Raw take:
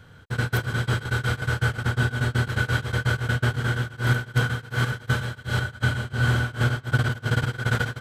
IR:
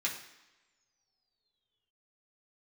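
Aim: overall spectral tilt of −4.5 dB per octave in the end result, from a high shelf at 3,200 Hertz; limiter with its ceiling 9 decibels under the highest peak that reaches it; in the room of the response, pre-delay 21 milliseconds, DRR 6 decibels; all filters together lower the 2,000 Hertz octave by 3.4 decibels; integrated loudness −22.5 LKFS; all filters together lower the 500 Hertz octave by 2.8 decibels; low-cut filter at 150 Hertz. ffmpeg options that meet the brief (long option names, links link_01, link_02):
-filter_complex "[0:a]highpass=150,equalizer=frequency=500:width_type=o:gain=-3,equalizer=frequency=2000:width_type=o:gain=-3.5,highshelf=frequency=3200:gain=-6,alimiter=limit=-22dB:level=0:latency=1,asplit=2[link_01][link_02];[1:a]atrim=start_sample=2205,adelay=21[link_03];[link_02][link_03]afir=irnorm=-1:irlink=0,volume=-10.5dB[link_04];[link_01][link_04]amix=inputs=2:normalize=0,volume=9.5dB"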